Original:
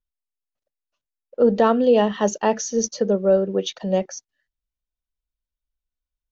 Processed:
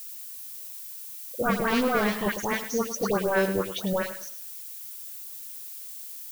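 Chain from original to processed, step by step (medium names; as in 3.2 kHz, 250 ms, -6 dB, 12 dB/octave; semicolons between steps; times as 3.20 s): treble shelf 4.7 kHz -9.5 dB; wavefolder -16.5 dBFS; phase dispersion highs, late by 111 ms, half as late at 1.6 kHz; added noise violet -38 dBFS; bit-crushed delay 104 ms, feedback 35%, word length 8-bit, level -11 dB; trim -2.5 dB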